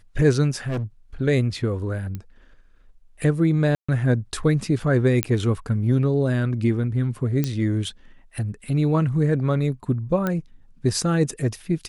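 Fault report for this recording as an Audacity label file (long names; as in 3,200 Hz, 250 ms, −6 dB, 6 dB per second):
0.660000	0.840000	clipping −23 dBFS
2.150000	2.150000	click −19 dBFS
3.750000	3.880000	drop-out 135 ms
5.230000	5.230000	click −5 dBFS
7.440000	7.440000	click −10 dBFS
10.270000	10.270000	click −12 dBFS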